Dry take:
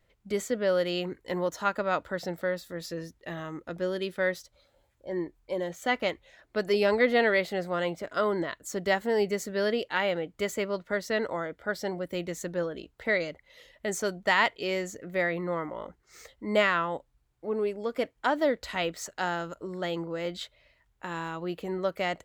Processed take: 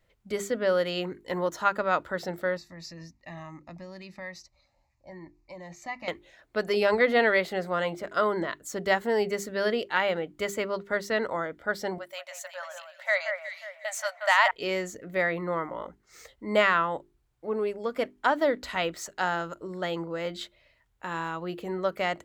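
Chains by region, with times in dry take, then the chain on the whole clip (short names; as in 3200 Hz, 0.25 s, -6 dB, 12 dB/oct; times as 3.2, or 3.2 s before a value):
2.57–6.08 LPF 11000 Hz 24 dB/oct + compressor 2.5:1, threshold -33 dBFS + fixed phaser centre 2200 Hz, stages 8
11.98–14.51 brick-wall FIR high-pass 550 Hz + echo with dull and thin repeats by turns 0.181 s, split 2000 Hz, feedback 60%, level -4.5 dB
whole clip: notches 50/100/150/200/250/300/350/400 Hz; dynamic EQ 1200 Hz, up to +4 dB, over -42 dBFS, Q 1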